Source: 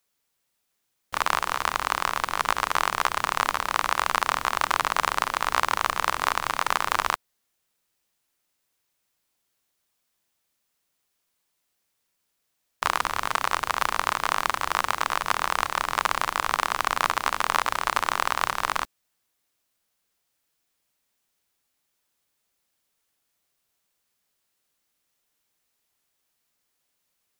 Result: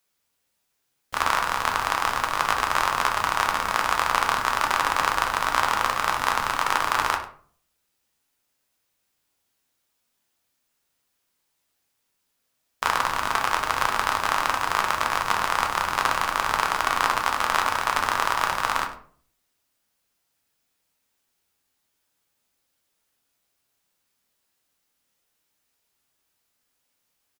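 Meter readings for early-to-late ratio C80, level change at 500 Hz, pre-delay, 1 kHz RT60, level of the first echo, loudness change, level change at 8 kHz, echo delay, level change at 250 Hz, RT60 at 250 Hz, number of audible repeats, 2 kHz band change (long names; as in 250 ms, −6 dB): 12.0 dB, +2.0 dB, 6 ms, 0.45 s, −15.5 dB, +2.0 dB, +1.0 dB, 100 ms, +3.0 dB, 0.65 s, 1, +2.0 dB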